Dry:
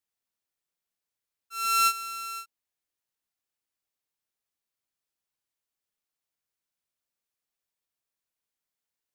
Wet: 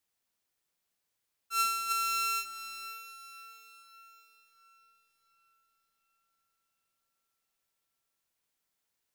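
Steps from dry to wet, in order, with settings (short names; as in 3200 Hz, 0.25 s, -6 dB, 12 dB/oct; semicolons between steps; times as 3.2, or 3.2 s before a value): negative-ratio compressor -31 dBFS, ratio -1; diffused feedback echo 0.563 s, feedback 43%, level -12 dB; gain +1 dB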